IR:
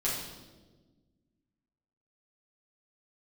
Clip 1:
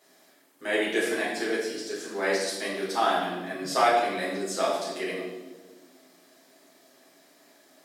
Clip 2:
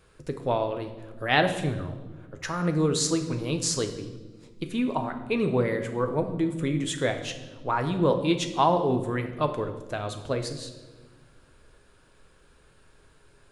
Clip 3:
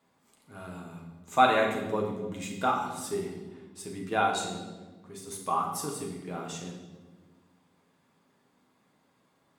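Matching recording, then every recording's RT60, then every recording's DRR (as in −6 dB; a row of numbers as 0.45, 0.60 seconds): 1; 1.3, 1.4, 1.3 seconds; −8.0, 5.5, −1.5 decibels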